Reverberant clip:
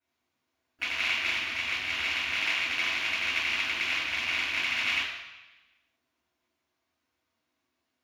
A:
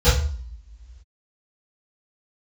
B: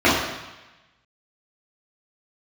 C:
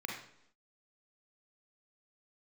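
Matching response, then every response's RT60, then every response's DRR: B; 0.50 s, 1.1 s, 0.75 s; -19.5 dB, -10.5 dB, -0.5 dB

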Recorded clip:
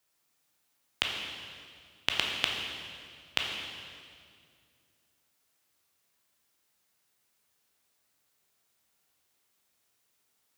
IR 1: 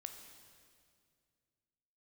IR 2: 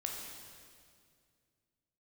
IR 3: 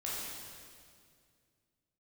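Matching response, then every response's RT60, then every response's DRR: 2; 2.2 s, 2.2 s, 2.2 s; 5.5 dB, -0.5 dB, -7.0 dB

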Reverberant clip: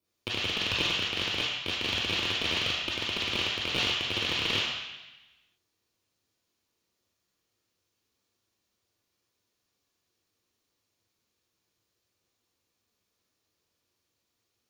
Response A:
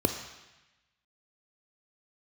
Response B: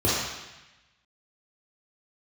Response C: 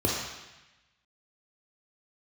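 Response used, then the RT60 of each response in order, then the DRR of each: C; 1.0 s, 1.0 s, 1.0 s; 7.0 dB, -7.0 dB, -2.5 dB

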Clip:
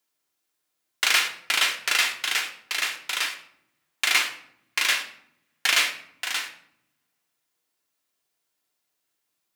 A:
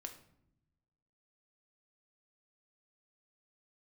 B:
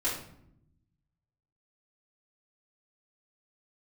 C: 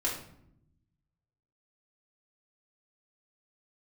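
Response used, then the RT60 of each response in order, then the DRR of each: A; 0.75 s, 0.75 s, 0.75 s; 4.0 dB, -10.5 dB, -6.0 dB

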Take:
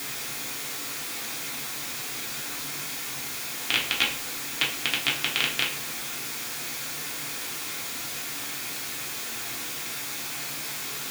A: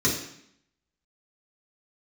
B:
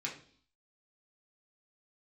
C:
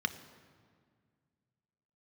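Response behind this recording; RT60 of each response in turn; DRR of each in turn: B; 0.70 s, 0.50 s, 1.9 s; -5.5 dB, -3.5 dB, 9.5 dB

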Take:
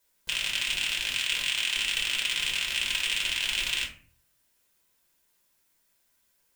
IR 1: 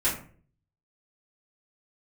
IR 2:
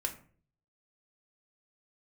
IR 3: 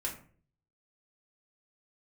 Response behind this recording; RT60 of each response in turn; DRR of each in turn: 3; 0.45 s, 0.45 s, 0.45 s; -10.0 dB, 3.5 dB, -2.0 dB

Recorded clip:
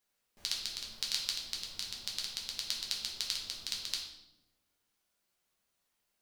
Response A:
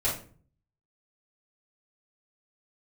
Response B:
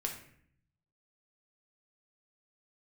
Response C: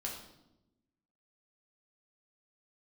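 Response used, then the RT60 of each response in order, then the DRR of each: C; 0.45 s, 0.60 s, 0.90 s; -10.5 dB, 1.0 dB, -2.0 dB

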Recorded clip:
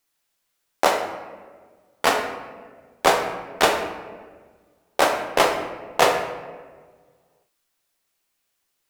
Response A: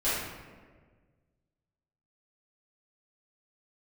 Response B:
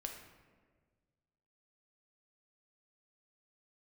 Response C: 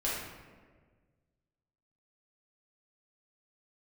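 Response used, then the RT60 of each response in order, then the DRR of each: B; 1.5 s, 1.6 s, 1.5 s; -13.5 dB, 2.5 dB, -7.5 dB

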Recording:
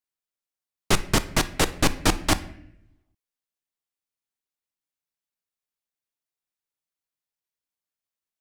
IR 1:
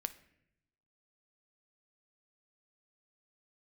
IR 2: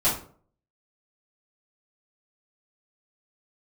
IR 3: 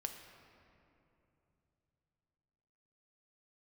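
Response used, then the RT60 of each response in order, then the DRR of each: 1; 0.80 s, 0.50 s, 3.0 s; 11.5 dB, -12.0 dB, 4.0 dB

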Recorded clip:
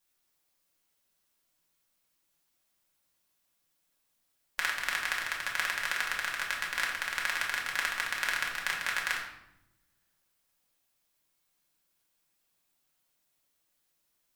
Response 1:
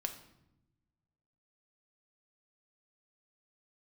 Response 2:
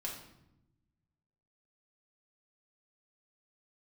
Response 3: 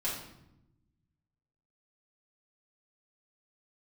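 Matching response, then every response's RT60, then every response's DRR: 2; 0.90 s, 0.85 s, 0.85 s; 5.0 dB, -3.0 dB, -8.5 dB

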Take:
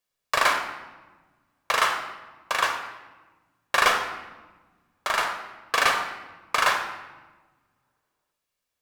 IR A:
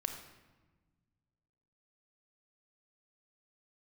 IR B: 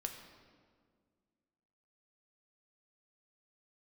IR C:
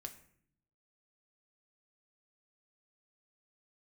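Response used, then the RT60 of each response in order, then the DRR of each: A; 1.3 s, 1.9 s, 0.60 s; 5.0 dB, 3.5 dB, 4.5 dB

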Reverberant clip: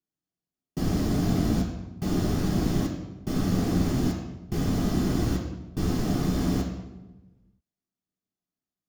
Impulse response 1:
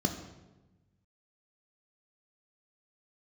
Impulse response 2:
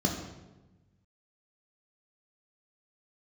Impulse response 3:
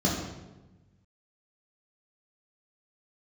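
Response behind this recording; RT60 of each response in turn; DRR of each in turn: 2; 1.1 s, 1.1 s, 1.1 s; 4.5 dB, 0.5 dB, -4.5 dB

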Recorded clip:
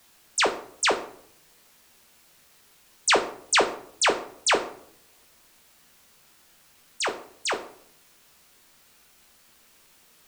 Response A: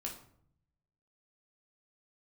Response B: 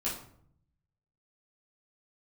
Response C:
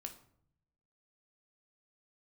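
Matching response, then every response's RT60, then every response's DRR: C; 0.65 s, 0.65 s, 0.65 s; -1.5 dB, -9.0 dB, 4.5 dB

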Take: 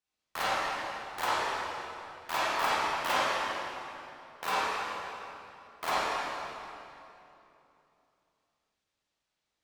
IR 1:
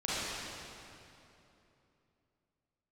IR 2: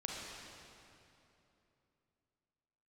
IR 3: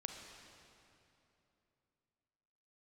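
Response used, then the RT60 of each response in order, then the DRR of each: 1; 3.0 s, 3.0 s, 3.0 s; -10.5 dB, -2.5 dB, 3.0 dB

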